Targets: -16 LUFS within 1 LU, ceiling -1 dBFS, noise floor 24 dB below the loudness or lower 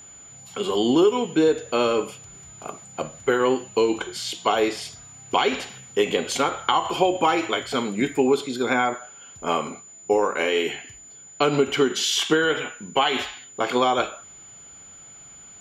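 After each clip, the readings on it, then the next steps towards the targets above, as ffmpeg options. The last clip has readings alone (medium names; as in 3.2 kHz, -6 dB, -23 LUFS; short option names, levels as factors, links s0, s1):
steady tone 7 kHz; tone level -43 dBFS; loudness -23.0 LUFS; peak level -5.0 dBFS; loudness target -16.0 LUFS
-> -af "bandreject=f=7000:w=30"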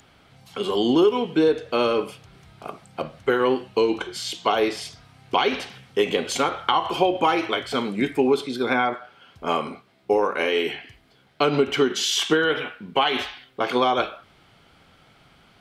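steady tone not found; loudness -23.0 LUFS; peak level -5.0 dBFS; loudness target -16.0 LUFS
-> -af "volume=2.24,alimiter=limit=0.891:level=0:latency=1"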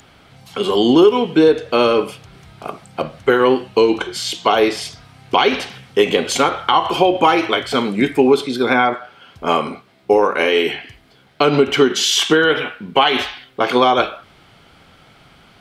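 loudness -16.0 LUFS; peak level -1.0 dBFS; noise floor -50 dBFS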